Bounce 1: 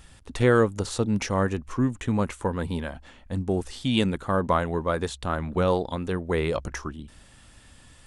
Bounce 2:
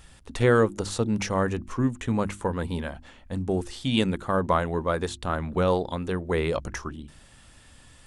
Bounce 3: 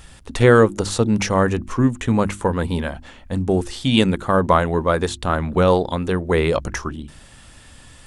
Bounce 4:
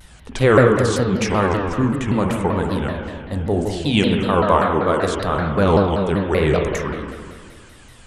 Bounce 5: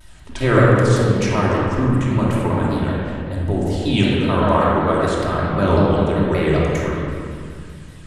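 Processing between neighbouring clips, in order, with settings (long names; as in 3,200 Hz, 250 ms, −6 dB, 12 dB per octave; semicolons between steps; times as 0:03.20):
mains-hum notches 50/100/150/200/250/300/350 Hz
every ending faded ahead of time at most 500 dB per second; level +7.5 dB
spring reverb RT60 1.9 s, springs 44/51 ms, chirp 80 ms, DRR 0.5 dB; pitch modulation by a square or saw wave saw down 5.2 Hz, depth 250 cents; level −2 dB
rectangular room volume 2,000 cubic metres, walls mixed, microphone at 2.8 metres; level −5 dB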